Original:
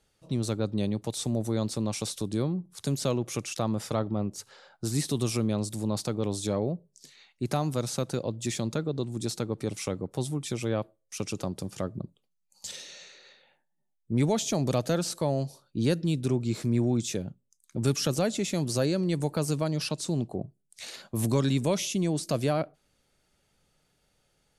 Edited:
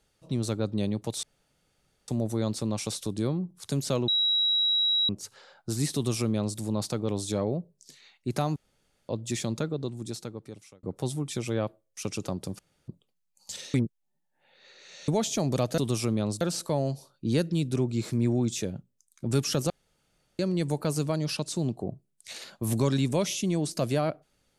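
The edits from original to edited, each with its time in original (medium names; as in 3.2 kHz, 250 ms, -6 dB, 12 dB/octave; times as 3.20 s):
1.23 s: insert room tone 0.85 s
3.23–4.24 s: bleep 3.87 kHz -21.5 dBFS
5.10–5.73 s: copy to 14.93 s
7.71–8.24 s: room tone
8.75–9.98 s: fade out
11.74–12.03 s: room tone
12.89–14.23 s: reverse
18.22–18.91 s: room tone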